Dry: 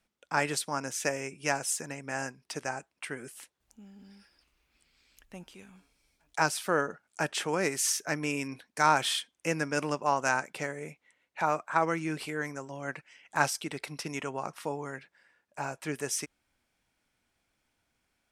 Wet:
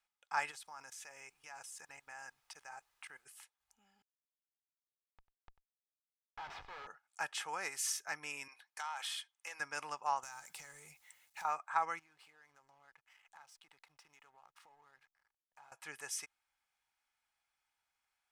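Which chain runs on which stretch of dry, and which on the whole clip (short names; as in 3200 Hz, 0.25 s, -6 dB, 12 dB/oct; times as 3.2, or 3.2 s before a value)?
0.5–3.25 level quantiser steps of 21 dB + added noise pink -69 dBFS
4.02–6.87 Schmitt trigger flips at -34.5 dBFS + air absorption 220 m + echo 95 ms -16 dB
8.48–9.6 HPF 620 Hz + compressor 16:1, threshold -28 dBFS + core saturation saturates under 1600 Hz
10.23–11.45 G.711 law mismatch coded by mu + tone controls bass +12 dB, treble +13 dB + compressor, threshold -37 dBFS
11.99–15.72 LPF 11000 Hz + compressor 5:1, threshold -50 dBFS + backlash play -54 dBFS
whole clip: resonant low shelf 580 Hz -14 dB, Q 1.5; comb 2.4 ms, depth 36%; gain -9 dB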